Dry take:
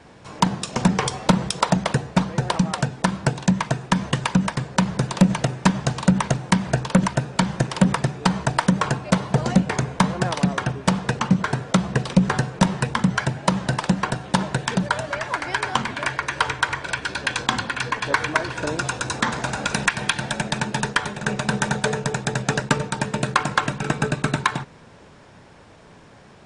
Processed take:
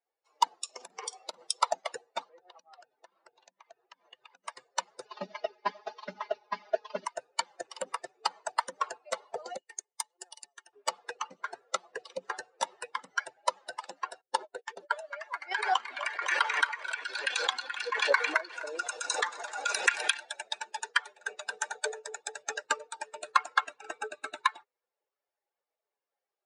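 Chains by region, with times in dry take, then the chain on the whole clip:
0:00.64–0:01.43: low-shelf EQ 160 Hz +6 dB + double-tracking delay 50 ms −12.5 dB + downward compressor 8 to 1, threshold −18 dBFS
0:02.29–0:04.44: downward compressor 8 to 1, threshold −26 dBFS + high-frequency loss of the air 94 metres
0:05.05–0:07.05: variable-slope delta modulation 32 kbit/s + comb filter 4.8 ms, depth 94%
0:09.57–0:10.73: first-order pre-emphasis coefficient 0.8 + transient designer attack +3 dB, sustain −5 dB + hollow resonant body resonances 380/870/1,800/2,900 Hz, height 7 dB, ringing for 35 ms
0:14.21–0:14.95: noise gate −27 dBFS, range −17 dB + parametric band 400 Hz +6 dB 0.95 octaves + one half of a high-frequency compander decoder only
0:15.51–0:20.23: echo with a time of its own for lows and highs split 360 Hz, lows 146 ms, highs 254 ms, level −11.5 dB + background raised ahead of every attack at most 26 dB per second
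whole clip: spectral dynamics exaggerated over time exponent 2; high-pass filter 510 Hz 24 dB per octave; level −1.5 dB

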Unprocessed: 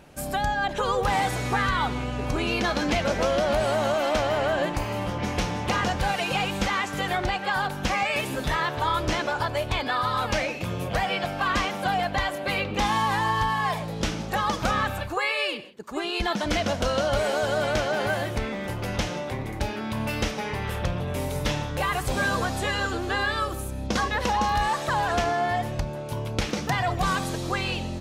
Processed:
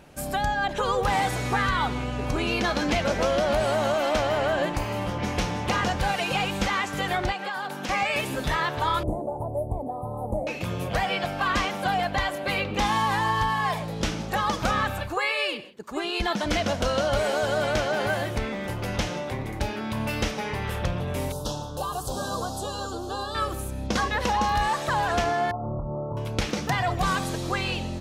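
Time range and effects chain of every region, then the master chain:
0:07.32–0:07.89: high-pass filter 180 Hz 24 dB per octave + downward compressor 4 to 1, threshold −28 dBFS
0:09.03–0:10.47: elliptic band-stop filter 760–9,600 Hz + high-shelf EQ 4,900 Hz −8 dB
0:21.32–0:23.35: Butterworth band-reject 2,100 Hz, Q 0.8 + low-shelf EQ 470 Hz −6 dB
0:25.51–0:26.17: downward compressor, threshold −28 dBFS + linear-phase brick-wall low-pass 1,400 Hz + double-tracking delay 27 ms −6 dB
whole clip: no processing

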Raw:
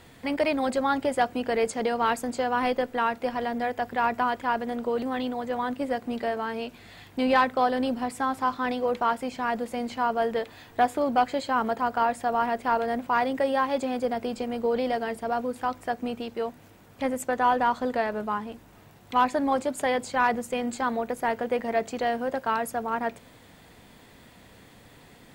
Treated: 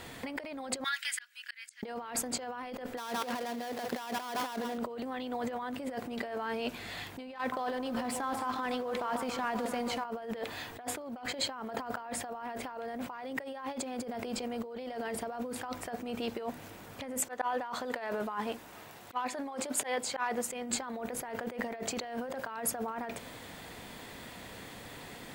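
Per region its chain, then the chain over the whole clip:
0:00.84–0:01.83: elliptic high-pass filter 1,600 Hz, stop band 80 dB + volume swells 732 ms
0:02.97–0:04.78: gap after every zero crossing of 0.15 ms + high-pass filter 150 Hz + single-tap delay 164 ms −15 dB
0:07.38–0:10.05: mu-law and A-law mismatch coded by A + downward compressor, threshold −28 dBFS + delay that swaps between a low-pass and a high-pass 141 ms, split 1,200 Hz, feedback 73%, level −11.5 dB
0:17.20–0:20.52: low-shelf EQ 220 Hz −11 dB + volume swells 348 ms
whole clip: compressor whose output falls as the input rises −36 dBFS, ratio −1; low-shelf EQ 270 Hz −6 dB

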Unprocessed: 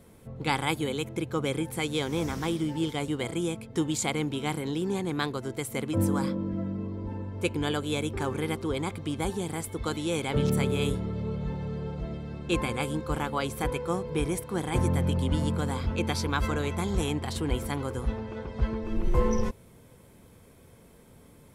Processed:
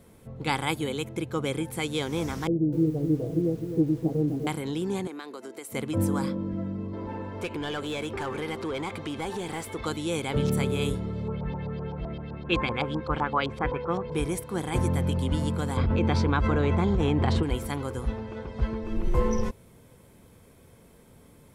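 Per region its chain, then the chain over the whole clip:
0:02.47–0:04.47: Butterworth low-pass 630 Hz + comb filter 6.4 ms, depth 77% + feedback echo at a low word length 254 ms, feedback 35%, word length 8 bits, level −8 dB
0:05.07–0:05.72: high-pass filter 260 Hz 24 dB per octave + notch filter 3,400 Hz + downward compressor 4 to 1, threshold −36 dBFS
0:06.93–0:09.86: downward compressor 3 to 1, threshold −31 dBFS + mid-hump overdrive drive 17 dB, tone 2,800 Hz, clips at −22.5 dBFS
0:11.28–0:14.12: auto-filter low-pass saw up 7.8 Hz 780–5,100 Hz + high-shelf EQ 9,700 Hz −8 dB
0:15.77–0:17.43: head-to-tape spacing loss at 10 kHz 26 dB + envelope flattener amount 100%
whole clip: no processing

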